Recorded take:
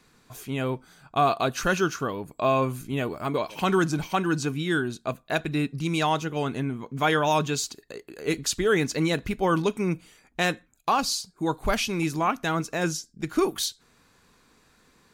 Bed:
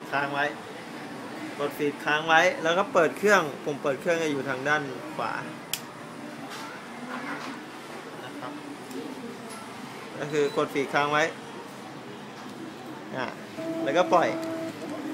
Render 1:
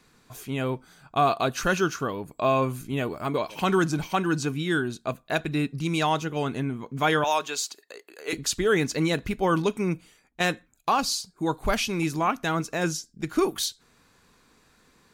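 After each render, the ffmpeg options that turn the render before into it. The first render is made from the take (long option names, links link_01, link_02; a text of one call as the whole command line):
ffmpeg -i in.wav -filter_complex "[0:a]asettb=1/sr,asplit=3[link_01][link_02][link_03];[link_01]atrim=end=7.244[link_04];[link_02]atrim=start=7.24:end=8.33,asetpts=PTS-STARTPTS,afade=type=in:duration=0.004:curve=qsin,afade=type=out:start_time=1.086:duration=0.004:curve=qsin,highpass=560[link_05];[link_03]atrim=start=8.326[link_06];[link_04][link_05]acrossfade=duration=0.004:curve1=hsin:curve2=qsin[link_07];[link_07][link_06]acrossfade=duration=0.004:curve1=qsin:curve2=hsin,asplit=2[link_08][link_09];[link_08]atrim=end=10.4,asetpts=PTS-STARTPTS,afade=type=out:start_time=9.76:duration=0.64:curve=qsin:silence=0.237137[link_10];[link_09]atrim=start=10.4,asetpts=PTS-STARTPTS,afade=type=in:duration=0.004:curve=hsin:silence=0.237137[link_11];[link_10][link_11]concat=n=2:v=0:a=1" out.wav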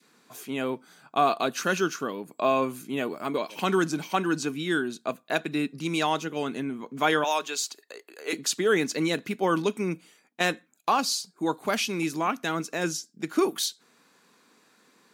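ffmpeg -i in.wav -af "highpass=frequency=190:width=0.5412,highpass=frequency=190:width=1.3066,adynamicequalizer=threshold=0.0126:dfrequency=840:dqfactor=0.88:tfrequency=840:tqfactor=0.88:attack=5:release=100:ratio=0.375:range=2.5:mode=cutabove:tftype=bell" out.wav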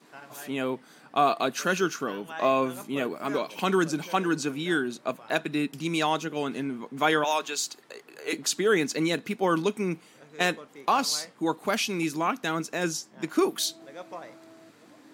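ffmpeg -i in.wav -i bed.wav -filter_complex "[1:a]volume=-19.5dB[link_01];[0:a][link_01]amix=inputs=2:normalize=0" out.wav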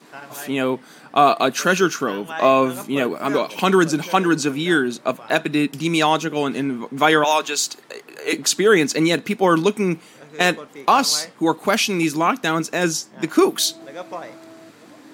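ffmpeg -i in.wav -af "volume=8.5dB,alimiter=limit=-2dB:level=0:latency=1" out.wav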